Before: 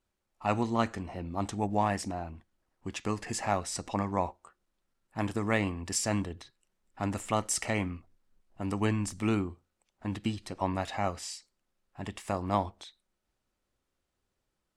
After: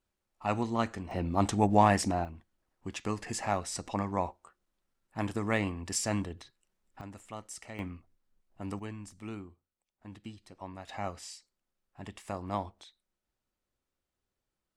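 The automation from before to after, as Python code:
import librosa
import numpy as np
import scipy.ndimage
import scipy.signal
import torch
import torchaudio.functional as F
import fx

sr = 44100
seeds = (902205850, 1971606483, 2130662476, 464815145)

y = fx.gain(x, sr, db=fx.steps((0.0, -2.0), (1.11, 5.5), (2.25, -1.5), (7.01, -14.0), (7.79, -5.0), (8.79, -13.0), (10.89, -5.5)))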